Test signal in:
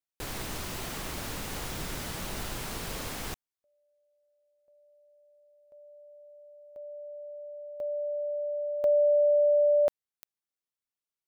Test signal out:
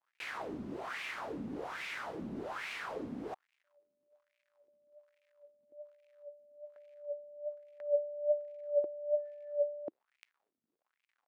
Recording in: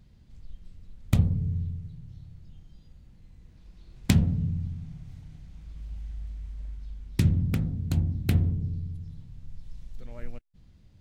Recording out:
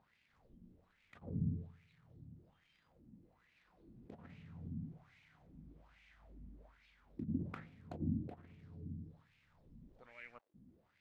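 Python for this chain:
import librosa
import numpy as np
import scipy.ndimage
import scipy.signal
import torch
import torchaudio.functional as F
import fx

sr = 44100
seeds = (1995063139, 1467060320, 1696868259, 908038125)

y = fx.over_compress(x, sr, threshold_db=-26.0, ratio=-0.5)
y = fx.dmg_crackle(y, sr, seeds[0], per_s=190.0, level_db=-55.0)
y = fx.wah_lfo(y, sr, hz=1.2, low_hz=230.0, high_hz=2400.0, q=4.0)
y = F.gain(torch.from_numpy(y), 5.0).numpy()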